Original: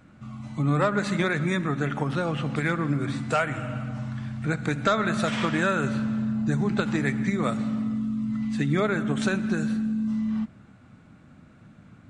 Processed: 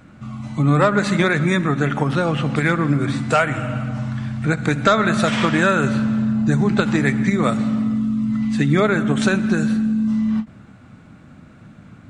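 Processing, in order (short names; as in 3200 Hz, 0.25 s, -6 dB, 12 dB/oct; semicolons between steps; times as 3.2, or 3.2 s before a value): ending taper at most 330 dB/s; gain +7.5 dB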